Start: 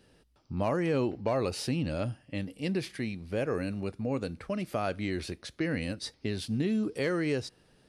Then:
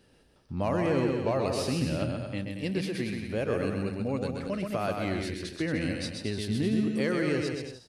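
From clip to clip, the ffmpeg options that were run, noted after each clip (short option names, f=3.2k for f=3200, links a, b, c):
-af "aecho=1:1:130|227.5|300.6|355.5|396.6:0.631|0.398|0.251|0.158|0.1"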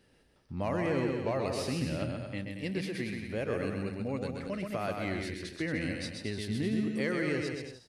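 -af "equalizer=f=2k:t=o:w=0.37:g=5.5,volume=-4dB"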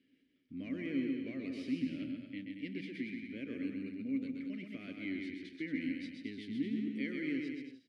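-filter_complex "[0:a]asplit=3[a][b][c];[a]bandpass=f=270:t=q:w=8,volume=0dB[d];[b]bandpass=f=2.29k:t=q:w=8,volume=-6dB[e];[c]bandpass=f=3.01k:t=q:w=8,volume=-9dB[f];[d][e][f]amix=inputs=3:normalize=0,volume=4.5dB"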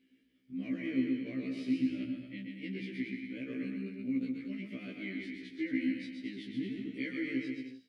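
-af "afftfilt=real='re*1.73*eq(mod(b,3),0)':imag='im*1.73*eq(mod(b,3),0)':win_size=2048:overlap=0.75,volume=4.5dB"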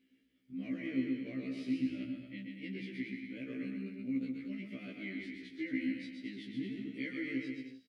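-filter_complex "[0:a]asplit=2[a][b];[b]adelay=14,volume=-13dB[c];[a][c]amix=inputs=2:normalize=0,volume=-2dB"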